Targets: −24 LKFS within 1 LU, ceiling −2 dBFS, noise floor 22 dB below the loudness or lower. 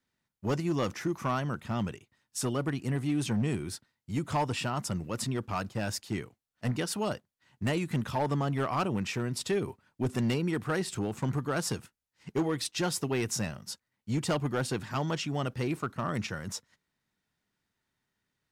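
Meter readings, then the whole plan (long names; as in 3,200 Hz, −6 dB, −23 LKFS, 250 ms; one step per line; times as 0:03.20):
share of clipped samples 1.2%; peaks flattened at −23.0 dBFS; integrated loudness −32.5 LKFS; sample peak −23.0 dBFS; target loudness −24.0 LKFS
→ clipped peaks rebuilt −23 dBFS
level +8.5 dB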